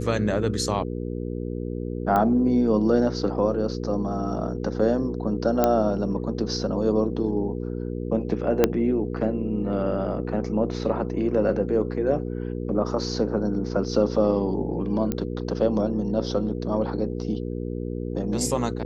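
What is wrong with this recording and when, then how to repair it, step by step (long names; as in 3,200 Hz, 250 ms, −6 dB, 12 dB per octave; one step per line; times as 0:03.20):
mains hum 60 Hz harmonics 8 −30 dBFS
0:02.16: click −12 dBFS
0:05.64: click −6 dBFS
0:08.64: click −4 dBFS
0:15.12: click −12 dBFS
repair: click removal
hum removal 60 Hz, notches 8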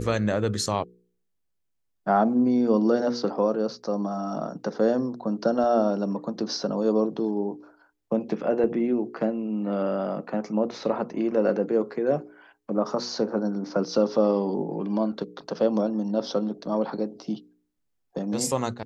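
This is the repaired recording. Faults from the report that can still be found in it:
0:02.16: click
0:08.64: click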